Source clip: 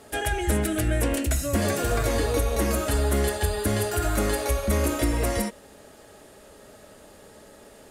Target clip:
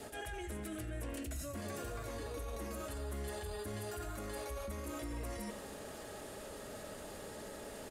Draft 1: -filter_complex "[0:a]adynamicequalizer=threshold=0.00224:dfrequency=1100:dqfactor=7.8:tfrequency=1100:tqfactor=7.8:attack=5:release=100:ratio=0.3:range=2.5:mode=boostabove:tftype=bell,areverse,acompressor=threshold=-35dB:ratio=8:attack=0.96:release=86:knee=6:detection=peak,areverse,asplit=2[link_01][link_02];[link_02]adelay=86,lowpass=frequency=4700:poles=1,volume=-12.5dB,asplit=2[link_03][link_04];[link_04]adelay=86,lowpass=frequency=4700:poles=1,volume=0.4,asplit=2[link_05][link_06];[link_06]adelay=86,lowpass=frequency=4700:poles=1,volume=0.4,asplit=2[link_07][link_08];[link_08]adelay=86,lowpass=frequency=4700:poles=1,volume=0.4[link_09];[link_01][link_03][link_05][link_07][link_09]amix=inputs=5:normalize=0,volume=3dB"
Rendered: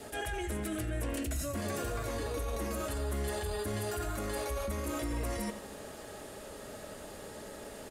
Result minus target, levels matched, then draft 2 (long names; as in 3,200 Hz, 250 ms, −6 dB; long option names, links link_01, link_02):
downward compressor: peak gain reduction −7 dB
-filter_complex "[0:a]adynamicequalizer=threshold=0.00224:dfrequency=1100:dqfactor=7.8:tfrequency=1100:tqfactor=7.8:attack=5:release=100:ratio=0.3:range=2.5:mode=boostabove:tftype=bell,areverse,acompressor=threshold=-43dB:ratio=8:attack=0.96:release=86:knee=6:detection=peak,areverse,asplit=2[link_01][link_02];[link_02]adelay=86,lowpass=frequency=4700:poles=1,volume=-12.5dB,asplit=2[link_03][link_04];[link_04]adelay=86,lowpass=frequency=4700:poles=1,volume=0.4,asplit=2[link_05][link_06];[link_06]adelay=86,lowpass=frequency=4700:poles=1,volume=0.4,asplit=2[link_07][link_08];[link_08]adelay=86,lowpass=frequency=4700:poles=1,volume=0.4[link_09];[link_01][link_03][link_05][link_07][link_09]amix=inputs=5:normalize=0,volume=3dB"